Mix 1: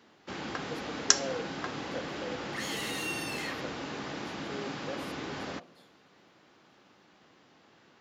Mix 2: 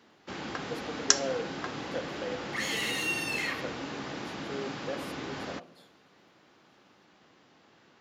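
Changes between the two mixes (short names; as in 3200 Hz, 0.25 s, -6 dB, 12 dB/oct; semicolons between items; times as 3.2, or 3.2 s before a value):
speech +3.5 dB; second sound: send +6.5 dB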